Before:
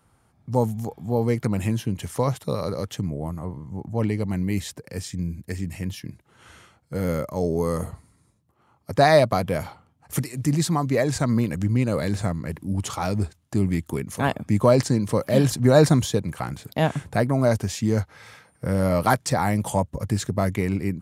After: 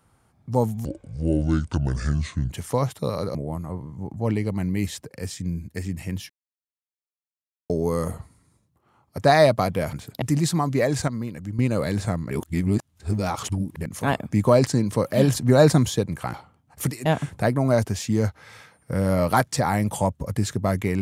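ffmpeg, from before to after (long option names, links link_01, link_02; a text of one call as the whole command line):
ffmpeg -i in.wav -filter_complex "[0:a]asplit=14[link_01][link_02][link_03][link_04][link_05][link_06][link_07][link_08][link_09][link_10][link_11][link_12][link_13][link_14];[link_01]atrim=end=0.854[link_15];[link_02]atrim=start=0.85:end=1.96,asetpts=PTS-STARTPTS,asetrate=29547,aresample=44100,atrim=end_sample=73061,asetpts=PTS-STARTPTS[link_16];[link_03]atrim=start=1.956:end=2.802[link_17];[link_04]atrim=start=3.078:end=6.03,asetpts=PTS-STARTPTS,afade=type=out:start_time=2.948:duration=0.004:curve=hsin[link_18];[link_05]atrim=start=6.03:end=7.43,asetpts=PTS-STARTPTS,volume=0[link_19];[link_06]atrim=start=7.43:end=9.662,asetpts=PTS-STARTPTS,afade=type=in:duration=0.004:curve=hsin[link_20];[link_07]atrim=start=16.498:end=16.792[link_21];[link_08]atrim=start=10.378:end=11.242[link_22];[link_09]atrim=start=11.238:end=11.752,asetpts=PTS-STARTPTS,volume=-8.5dB[link_23];[link_10]atrim=start=11.748:end=12.472[link_24];[link_11]atrim=start=12.468:end=14.022,asetpts=PTS-STARTPTS,areverse[link_25];[link_12]atrim=start=14.018:end=16.502[link_26];[link_13]atrim=start=9.658:end=10.382[link_27];[link_14]atrim=start=16.788[link_28];[link_15][link_16]acrossfade=duration=0.004:curve1=hsin:curve2=hsin[link_29];[link_29][link_17]acrossfade=duration=0.004:curve1=hsin:curve2=hsin[link_30];[link_18][link_19][link_20]concat=n=3:v=0:a=1[link_31];[link_30][link_31]acrossfade=duration=0.004:curve1=hsin:curve2=hsin[link_32];[link_32][link_21]acrossfade=duration=0.004:curve1=hsin:curve2=hsin[link_33];[link_33][link_22]acrossfade=duration=0.004:curve1=hsin:curve2=hsin[link_34];[link_34][link_23]acrossfade=duration=0.004:curve1=hsin:curve2=hsin[link_35];[link_35][link_24]acrossfade=duration=0.004:curve1=hsin:curve2=hsin[link_36];[link_36][link_25]acrossfade=duration=0.004:curve1=hsin:curve2=hsin[link_37];[link_37][link_26]acrossfade=duration=0.004:curve1=hsin:curve2=hsin[link_38];[link_38][link_27]acrossfade=duration=0.004:curve1=hsin:curve2=hsin[link_39];[link_39][link_28]acrossfade=duration=0.004:curve1=hsin:curve2=hsin" out.wav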